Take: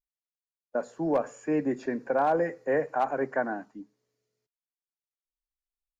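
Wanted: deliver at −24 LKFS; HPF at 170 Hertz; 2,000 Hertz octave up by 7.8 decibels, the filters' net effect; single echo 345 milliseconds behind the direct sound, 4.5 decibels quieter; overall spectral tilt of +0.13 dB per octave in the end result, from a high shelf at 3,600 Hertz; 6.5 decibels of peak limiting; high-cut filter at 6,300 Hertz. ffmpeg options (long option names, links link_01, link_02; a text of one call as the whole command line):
ffmpeg -i in.wav -af "highpass=170,lowpass=6300,equalizer=frequency=2000:width_type=o:gain=9,highshelf=frequency=3600:gain=5.5,alimiter=limit=-19dB:level=0:latency=1,aecho=1:1:345:0.596,volume=5.5dB" out.wav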